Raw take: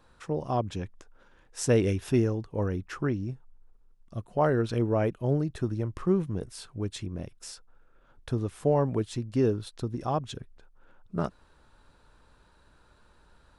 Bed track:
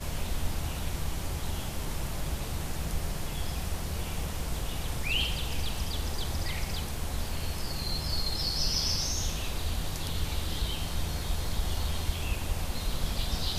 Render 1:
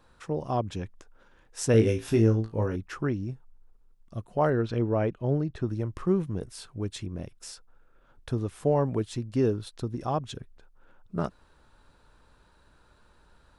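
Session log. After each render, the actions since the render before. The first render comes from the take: 1.72–2.76 flutter echo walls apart 3.1 m, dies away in 0.21 s; 4.5–5.68 air absorption 100 m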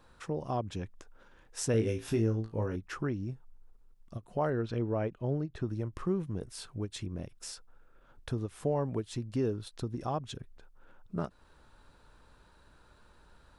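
compressor 1.5:1, threshold -38 dBFS, peak gain reduction 8.5 dB; ending taper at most 430 dB/s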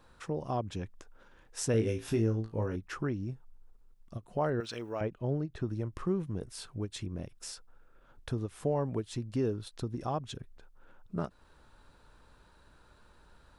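4.6–5.01 tilt +4.5 dB/oct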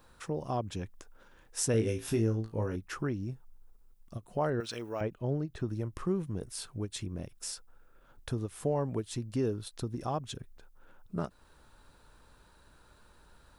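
high shelf 8900 Hz +11.5 dB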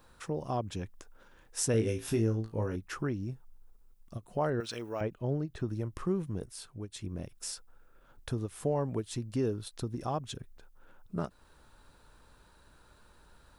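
6.46–7.04 gain -5 dB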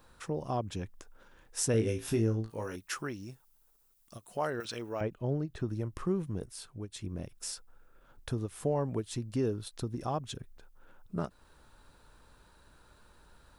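2.5–4.65 tilt +3 dB/oct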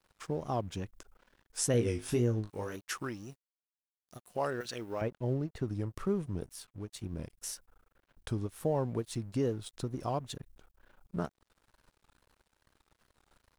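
wow and flutter 130 cents; crossover distortion -56.5 dBFS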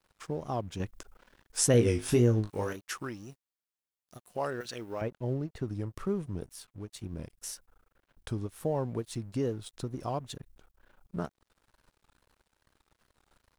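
0.8–2.73 gain +5.5 dB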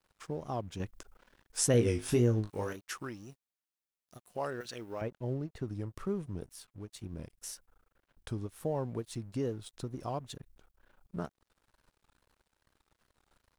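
gain -3 dB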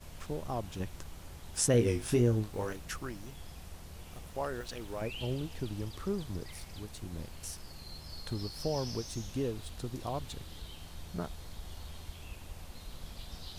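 add bed track -14.5 dB

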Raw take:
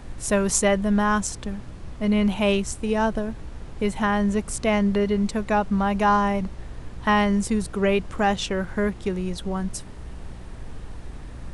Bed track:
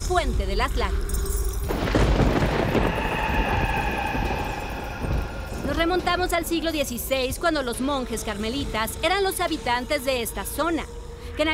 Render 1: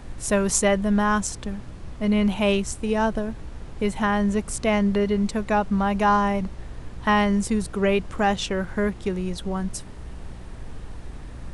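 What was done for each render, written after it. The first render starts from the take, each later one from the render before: nothing audible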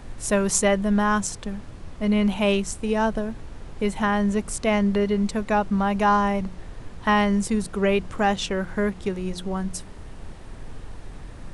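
de-hum 60 Hz, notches 6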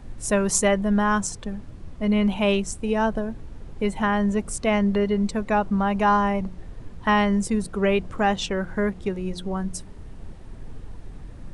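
denoiser 7 dB, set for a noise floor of -41 dBFS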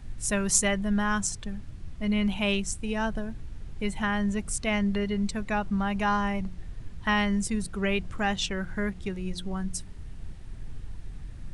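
ten-band EQ 250 Hz -5 dB, 500 Hz -9 dB, 1000 Hz -6 dB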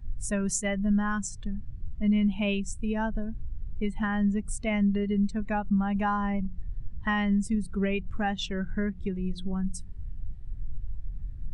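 compressor 2.5:1, threshold -31 dBFS, peak gain reduction 9 dB; spectral expander 1.5:1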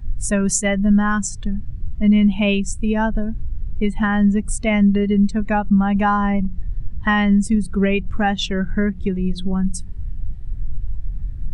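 gain +10 dB

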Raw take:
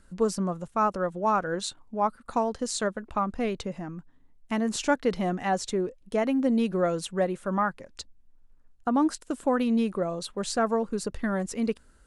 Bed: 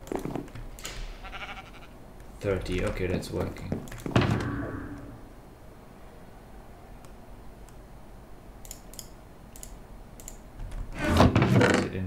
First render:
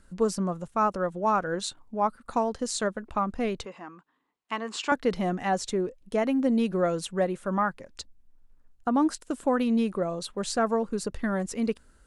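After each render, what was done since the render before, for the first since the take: 3.65–4.92 speaker cabinet 430–7400 Hz, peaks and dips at 600 Hz -7 dB, 1100 Hz +8 dB, 2800 Hz +3 dB, 6000 Hz -8 dB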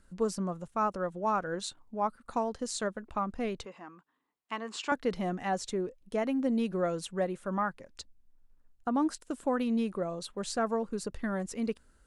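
gain -5 dB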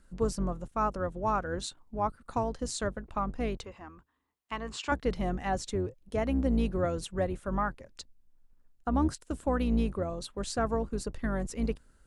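octaver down 2 oct, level 0 dB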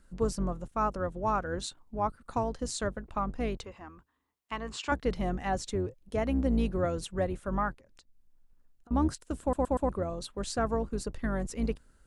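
7.73–8.91 compressor 16:1, threshold -54 dBFS; 9.41 stutter in place 0.12 s, 4 plays

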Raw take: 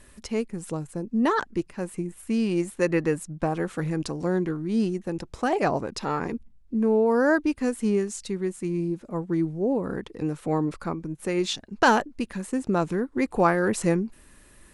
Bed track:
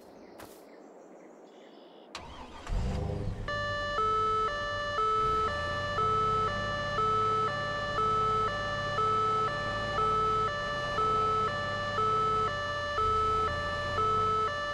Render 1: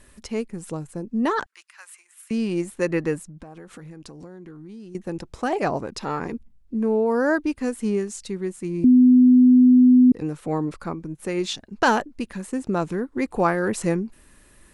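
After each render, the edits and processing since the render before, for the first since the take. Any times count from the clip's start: 1.46–2.31 HPF 1200 Hz 24 dB/oct; 3.2–4.95 compressor 12:1, threshold -37 dBFS; 8.84–10.12 bleep 251 Hz -9.5 dBFS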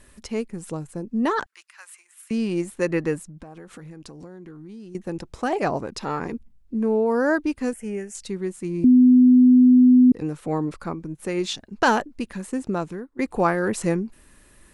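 7.73–8.15 fixed phaser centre 1100 Hz, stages 6; 12.62–13.19 fade out, to -18.5 dB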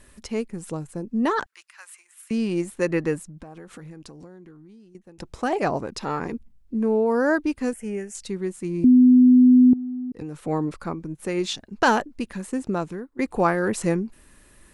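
3.87–5.18 fade out, to -23.5 dB; 9.73–10.45 compressor 16:1, threshold -28 dBFS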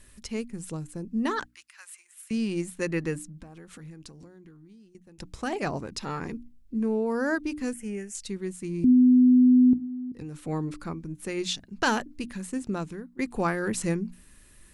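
bell 670 Hz -8.5 dB 2.5 oct; notches 60/120/180/240/300 Hz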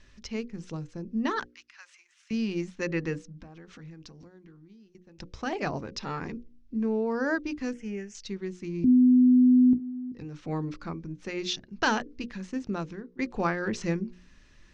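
elliptic low-pass 6000 Hz, stop band 80 dB; notches 60/120/180/240/300/360/420/480/540 Hz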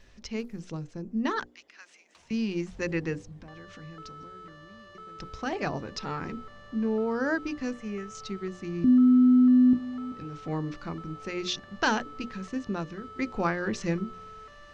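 add bed track -18 dB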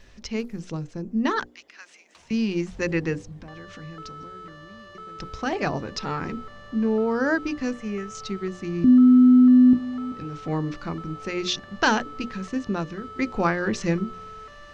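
gain +5 dB

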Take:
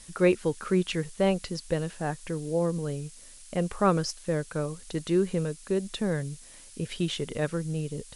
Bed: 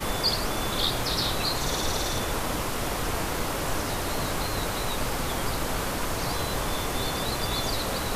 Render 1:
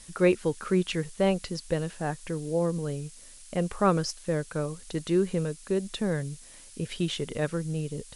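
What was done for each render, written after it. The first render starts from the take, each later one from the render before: nothing audible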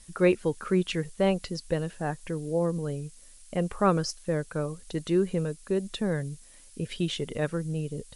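denoiser 6 dB, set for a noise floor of -49 dBFS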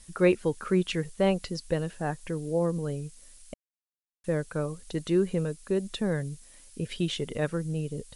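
3.54–4.24 mute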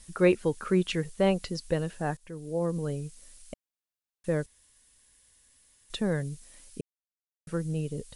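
2.17–2.83 fade in, from -15 dB; 4.46–5.9 room tone; 6.81–7.47 mute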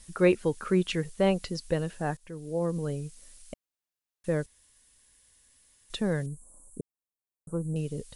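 6.26–7.76 elliptic band-stop 1100–7800 Hz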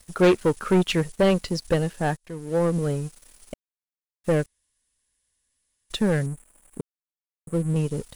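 sample leveller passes 3; upward expander 1.5:1, over -26 dBFS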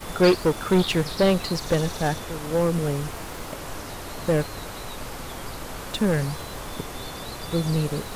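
add bed -6.5 dB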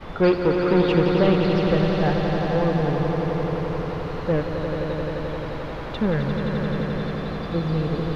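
air absorption 300 m; swelling echo 87 ms, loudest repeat 5, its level -7.5 dB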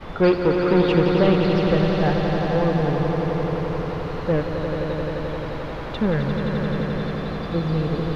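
gain +1 dB

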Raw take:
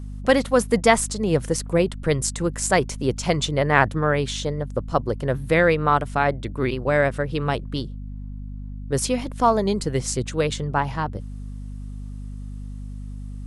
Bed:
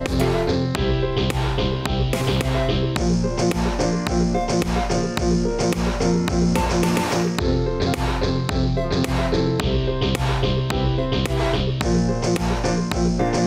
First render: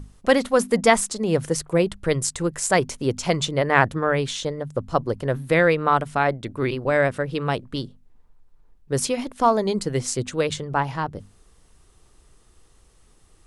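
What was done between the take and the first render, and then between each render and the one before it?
notches 50/100/150/200/250 Hz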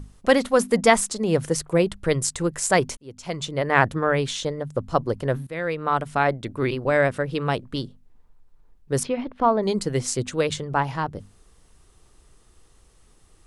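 2.97–3.87 fade in; 5.47–6.2 fade in, from -18.5 dB; 9.03–9.63 air absorption 350 m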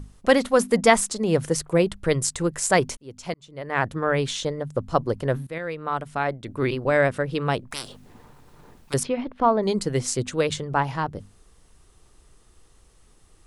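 3.34–4.22 fade in; 5.58–6.48 gain -4.5 dB; 7.71–8.94 spectral compressor 10:1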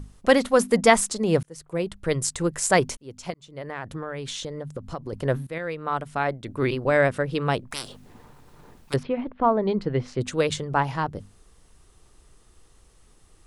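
1.43–2.73 fade in equal-power; 3.3–5.13 compressor, threshold -29 dBFS; 8.96–10.21 air absorption 320 m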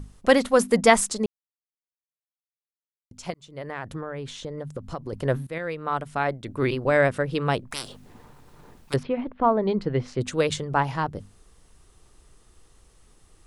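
1.26–3.11 mute; 4.01–4.58 high shelf 2400 Hz -9 dB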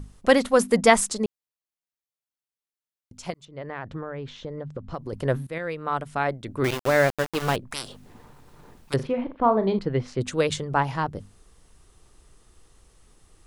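3.45–4.94 air absorption 170 m; 6.64–7.56 sample gate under -25 dBFS; 8.95–9.79 flutter echo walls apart 7.1 m, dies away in 0.25 s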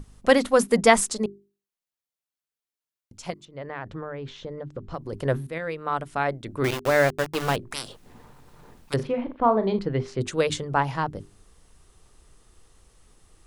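notches 50/100/150/200/250/300/350/400 Hz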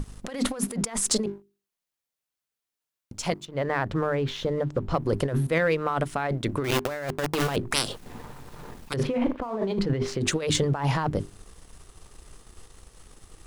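negative-ratio compressor -30 dBFS, ratio -1; sample leveller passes 1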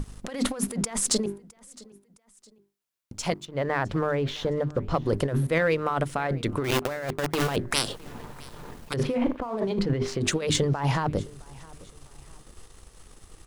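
feedback echo 0.662 s, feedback 37%, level -23 dB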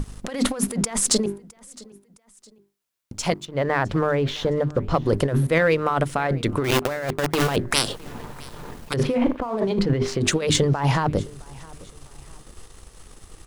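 gain +4.5 dB

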